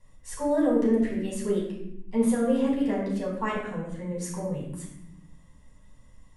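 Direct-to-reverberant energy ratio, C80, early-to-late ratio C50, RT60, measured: -5.0 dB, 6.0 dB, 3.5 dB, 0.80 s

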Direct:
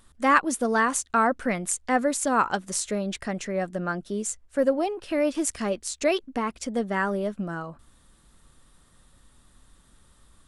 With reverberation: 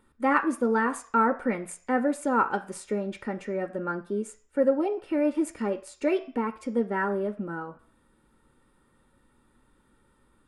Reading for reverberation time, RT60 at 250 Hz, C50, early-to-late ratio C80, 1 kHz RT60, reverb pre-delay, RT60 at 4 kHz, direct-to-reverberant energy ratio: 0.45 s, 0.40 s, 16.0 dB, 19.5 dB, 0.50 s, 3 ms, 0.55 s, 9.5 dB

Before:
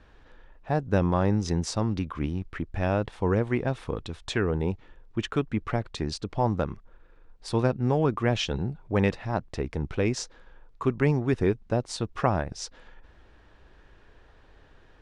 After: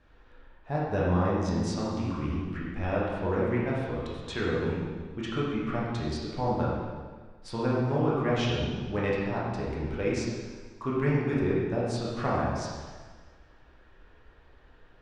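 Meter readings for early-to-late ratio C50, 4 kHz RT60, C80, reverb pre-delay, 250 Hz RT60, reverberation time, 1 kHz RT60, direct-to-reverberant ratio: -1.5 dB, 1.4 s, 1.0 dB, 6 ms, 1.5 s, 1.5 s, 1.5 s, -6.5 dB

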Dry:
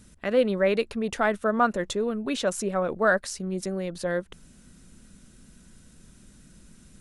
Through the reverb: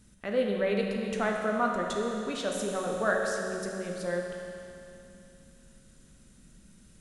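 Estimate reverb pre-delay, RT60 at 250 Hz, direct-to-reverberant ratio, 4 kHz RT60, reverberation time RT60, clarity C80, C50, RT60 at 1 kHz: 11 ms, 2.8 s, 0.0 dB, 2.8 s, 2.8 s, 2.5 dB, 1.5 dB, 2.8 s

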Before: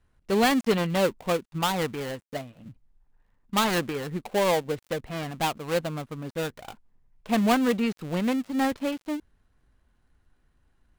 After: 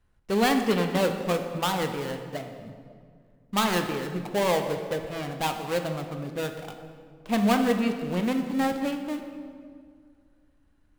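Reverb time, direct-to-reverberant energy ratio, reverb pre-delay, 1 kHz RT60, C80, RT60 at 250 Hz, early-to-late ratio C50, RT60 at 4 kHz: 2.0 s, 5.5 dB, 7 ms, 1.9 s, 8.0 dB, 2.6 s, 7.0 dB, 1.4 s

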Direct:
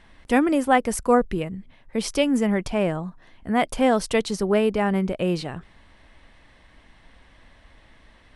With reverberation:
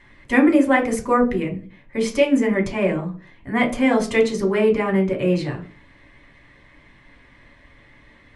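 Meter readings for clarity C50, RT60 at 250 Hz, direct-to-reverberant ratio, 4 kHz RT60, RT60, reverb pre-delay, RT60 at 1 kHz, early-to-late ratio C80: 12.5 dB, 0.55 s, 0.5 dB, 0.35 s, 0.40 s, 3 ms, 0.35 s, 18.0 dB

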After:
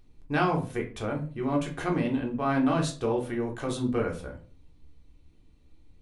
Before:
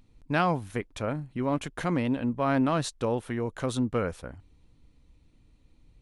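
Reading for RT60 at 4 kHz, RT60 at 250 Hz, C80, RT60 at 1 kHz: 0.30 s, 0.55 s, 16.5 dB, 0.35 s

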